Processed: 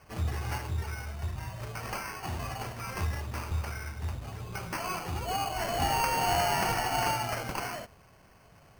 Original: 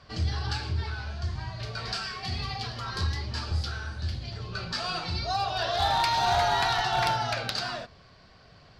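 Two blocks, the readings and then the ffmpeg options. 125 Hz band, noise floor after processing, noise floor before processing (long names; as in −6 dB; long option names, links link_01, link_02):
−2.5 dB, −58 dBFS, −55 dBFS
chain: -af "acrusher=samples=12:mix=1:aa=0.000001,volume=-3dB"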